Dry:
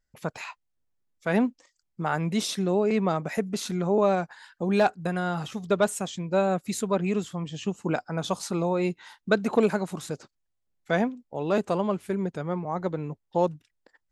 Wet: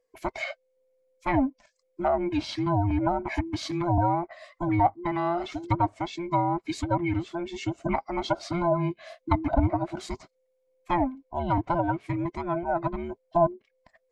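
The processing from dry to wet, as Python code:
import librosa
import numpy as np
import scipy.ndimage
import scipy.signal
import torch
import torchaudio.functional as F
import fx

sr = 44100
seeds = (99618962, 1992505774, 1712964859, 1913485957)

y = fx.band_invert(x, sr, width_hz=500)
y = fx.small_body(y, sr, hz=(650.0, 2200.0), ring_ms=25, db=13)
y = fx.dynamic_eq(y, sr, hz=4600.0, q=2.5, threshold_db=-51.0, ratio=4.0, max_db=6)
y = fx.env_lowpass_down(y, sr, base_hz=840.0, full_db=-17.5)
y = F.gain(torch.from_numpy(y), -1.5).numpy()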